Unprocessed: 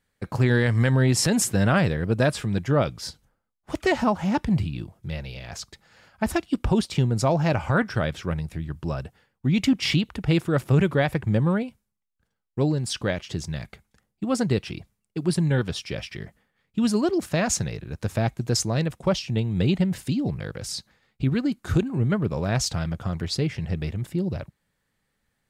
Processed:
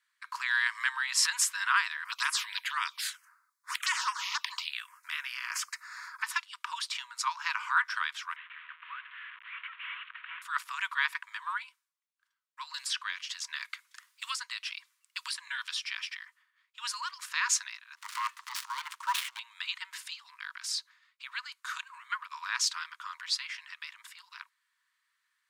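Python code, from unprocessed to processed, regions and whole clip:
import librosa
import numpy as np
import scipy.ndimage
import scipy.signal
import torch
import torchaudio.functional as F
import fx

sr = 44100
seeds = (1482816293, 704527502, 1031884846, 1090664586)

y = fx.chain(x, sr, fx.peak_eq(hz=93.0, db=-6.0, octaves=2.5),
    fx.env_phaser(low_hz=490.0, high_hz=4100.0, full_db=-18.0),
    fx.spectral_comp(ratio=2.0), at=(2.05, 6.23))
y = fx.chain(y, sr, fx.delta_mod(bps=16000, step_db=-36.5),
    fx.highpass(hz=1200.0, slope=24), at=(8.36, 10.42))
y = fx.chain(y, sr, fx.highpass(hz=1500.0, slope=6),
    fx.band_squash(depth_pct=100), at=(12.74, 15.98))
y = fx.chain(y, sr, fx.dead_time(dead_ms=0.08),
    fx.ring_mod(carrier_hz=400.0),
    fx.transient(attack_db=-1, sustain_db=11), at=(17.95, 19.39))
y = scipy.signal.sosfilt(scipy.signal.cheby1(8, 1.0, 960.0, 'highpass', fs=sr, output='sos'), y)
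y = fx.high_shelf(y, sr, hz=7800.0, db=-7.5)
y = F.gain(torch.from_numpy(y), 1.5).numpy()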